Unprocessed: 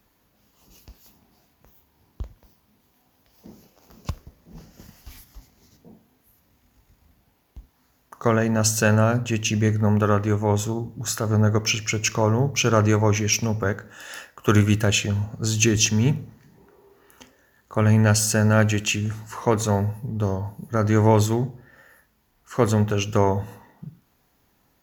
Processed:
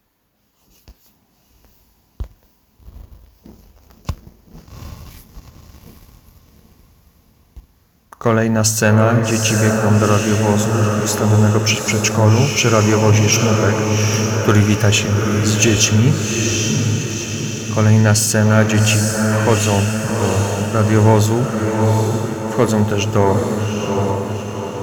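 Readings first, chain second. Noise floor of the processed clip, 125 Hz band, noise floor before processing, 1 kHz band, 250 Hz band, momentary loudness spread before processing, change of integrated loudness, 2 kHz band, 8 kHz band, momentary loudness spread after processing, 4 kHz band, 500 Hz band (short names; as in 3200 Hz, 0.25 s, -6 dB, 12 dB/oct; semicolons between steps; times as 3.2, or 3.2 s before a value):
-57 dBFS, +7.0 dB, -65 dBFS, +7.0 dB, +7.0 dB, 14 LU, +6.5 dB, +7.0 dB, +7.5 dB, 9 LU, +7.5 dB, +7.0 dB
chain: diffused feedback echo 0.798 s, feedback 55%, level -4 dB; sample leveller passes 1; gain +2 dB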